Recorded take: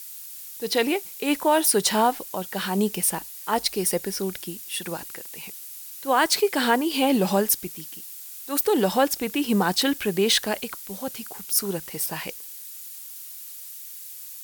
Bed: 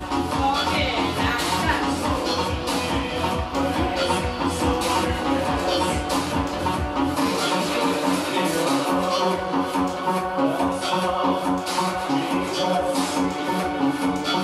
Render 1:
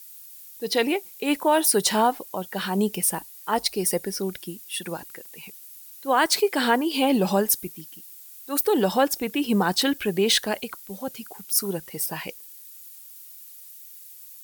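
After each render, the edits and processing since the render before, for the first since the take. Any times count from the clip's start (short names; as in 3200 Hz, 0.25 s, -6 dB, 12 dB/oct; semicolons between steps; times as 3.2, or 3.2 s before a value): denoiser 8 dB, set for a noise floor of -40 dBFS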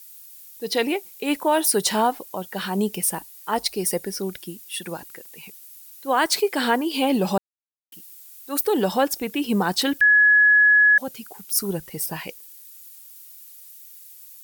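7.38–7.92 mute; 10.01–10.98 bleep 1690 Hz -11.5 dBFS; 11.59–12.17 low shelf 130 Hz +10.5 dB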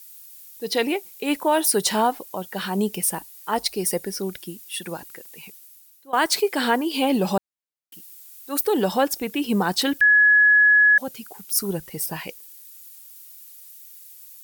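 5.43–6.13 fade out, to -20 dB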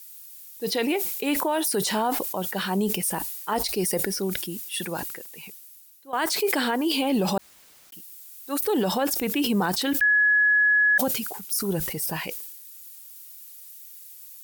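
limiter -16 dBFS, peak gain reduction 9.5 dB; sustainer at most 43 dB/s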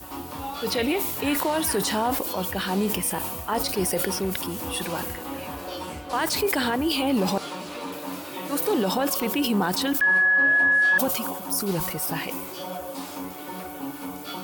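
add bed -12.5 dB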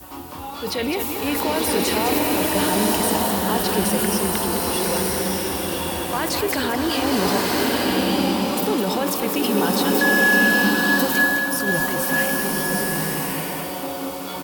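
echo 0.21 s -7.5 dB; bloom reverb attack 1.2 s, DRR -3 dB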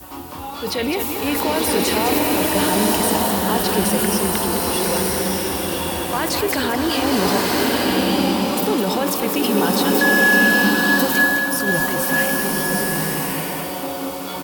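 gain +2 dB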